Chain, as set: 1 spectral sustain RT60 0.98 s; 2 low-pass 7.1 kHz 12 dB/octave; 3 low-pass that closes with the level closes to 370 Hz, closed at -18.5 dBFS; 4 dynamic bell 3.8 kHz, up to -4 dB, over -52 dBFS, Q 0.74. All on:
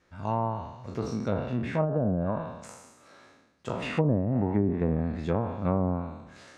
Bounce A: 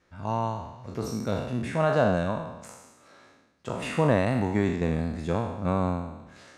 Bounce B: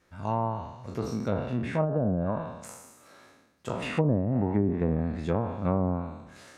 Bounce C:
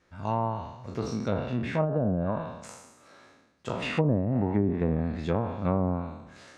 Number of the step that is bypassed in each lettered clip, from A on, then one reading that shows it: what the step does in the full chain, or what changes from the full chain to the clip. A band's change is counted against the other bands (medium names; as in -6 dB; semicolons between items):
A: 3, 125 Hz band -4.0 dB; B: 2, 8 kHz band +3.0 dB; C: 4, 4 kHz band +3.0 dB